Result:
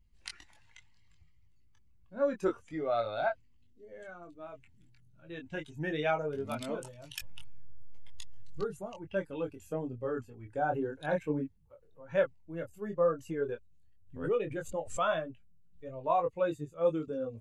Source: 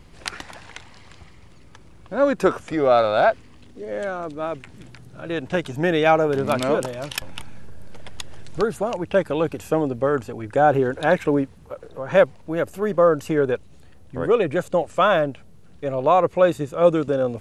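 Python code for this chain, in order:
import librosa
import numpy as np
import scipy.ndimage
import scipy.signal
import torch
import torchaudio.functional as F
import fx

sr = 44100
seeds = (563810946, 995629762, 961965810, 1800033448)

y = fx.bin_expand(x, sr, power=1.5)
y = fx.chorus_voices(y, sr, voices=4, hz=0.12, base_ms=22, depth_ms=4.5, mix_pct=40)
y = fx.pre_swell(y, sr, db_per_s=110.0, at=(13.41, 15.87))
y = F.gain(torch.from_numpy(y), -7.5).numpy()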